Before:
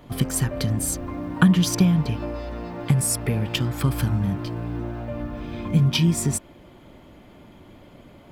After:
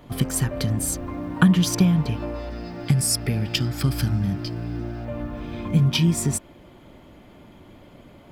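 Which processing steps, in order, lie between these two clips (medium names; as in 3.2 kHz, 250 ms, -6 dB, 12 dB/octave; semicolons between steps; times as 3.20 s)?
2.50–5.05 s: graphic EQ with 31 bands 500 Hz -7 dB, 1 kHz -11 dB, 5 kHz +11 dB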